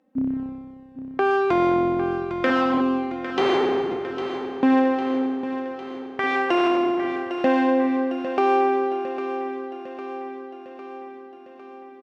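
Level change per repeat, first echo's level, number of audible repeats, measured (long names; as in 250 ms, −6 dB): −4.5 dB, −10.5 dB, 6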